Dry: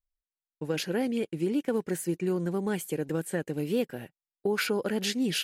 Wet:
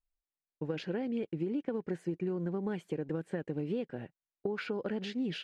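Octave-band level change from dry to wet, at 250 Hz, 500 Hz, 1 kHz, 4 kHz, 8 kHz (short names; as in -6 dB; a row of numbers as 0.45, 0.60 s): -5.0 dB, -6.0 dB, -7.5 dB, -12.0 dB, under -20 dB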